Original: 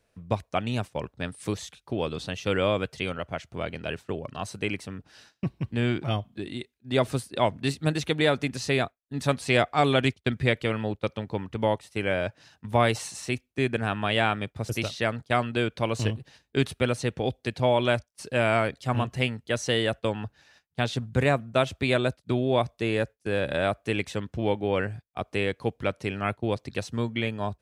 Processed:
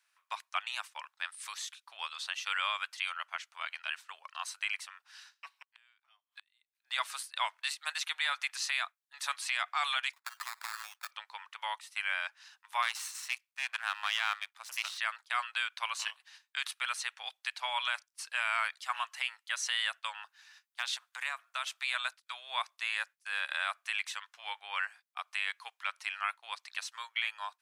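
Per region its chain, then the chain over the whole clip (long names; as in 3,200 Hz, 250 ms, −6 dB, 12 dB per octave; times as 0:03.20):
0:05.62–0:06.75: high-pass filter 150 Hz + low-shelf EQ 250 Hz −7 dB + gate with flip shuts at −28 dBFS, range −32 dB
0:10.13–0:11.11: flat-topped bell 1,900 Hz +10 dB + sample-rate reduction 3,000 Hz + downward compressor 12 to 1, threshold −31 dBFS
0:12.82–0:14.98: gain on one half-wave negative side −12 dB + high-pass filter 190 Hz
0:20.24–0:21.94: high-shelf EQ 6,300 Hz +3.5 dB + downward compressor 16 to 1, threshold −23 dBFS + hard clipping −17 dBFS
whole clip: Butterworth high-pass 1,000 Hz 36 dB per octave; brickwall limiter −19 dBFS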